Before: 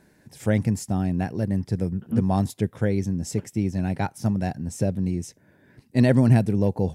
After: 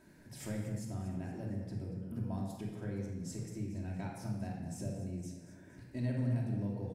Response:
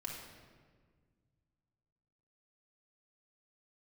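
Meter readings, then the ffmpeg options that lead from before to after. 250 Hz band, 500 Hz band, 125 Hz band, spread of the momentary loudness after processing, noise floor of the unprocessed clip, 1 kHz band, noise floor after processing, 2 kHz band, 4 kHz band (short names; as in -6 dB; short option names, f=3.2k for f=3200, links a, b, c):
-16.0 dB, -18.0 dB, -14.5 dB, 11 LU, -60 dBFS, -18.0 dB, -56 dBFS, -17.5 dB, -14.5 dB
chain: -filter_complex "[0:a]acompressor=threshold=-40dB:ratio=3,aecho=1:1:233|466|699|932|1165:0.211|0.108|0.055|0.028|0.0143[a];[1:a]atrim=start_sample=2205,afade=t=out:st=0.31:d=0.01,atrim=end_sample=14112[b];[a][b]afir=irnorm=-1:irlink=0,volume=-1dB"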